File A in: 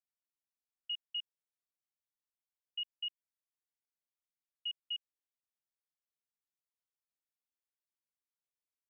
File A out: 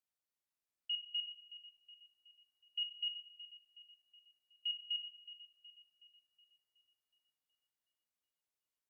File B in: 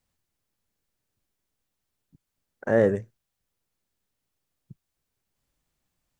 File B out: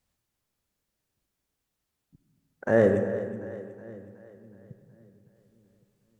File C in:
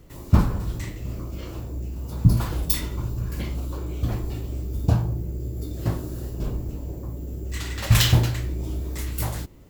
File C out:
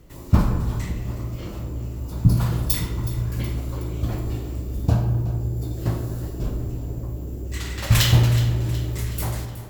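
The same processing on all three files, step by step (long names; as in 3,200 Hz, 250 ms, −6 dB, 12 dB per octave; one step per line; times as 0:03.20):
harmonic generator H 2 −25 dB, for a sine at −2 dBFS
echo with a time of its own for lows and highs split 300 Hz, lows 558 ms, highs 370 ms, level −14.5 dB
comb and all-pass reverb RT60 1.7 s, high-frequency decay 0.4×, pre-delay 15 ms, DRR 6.5 dB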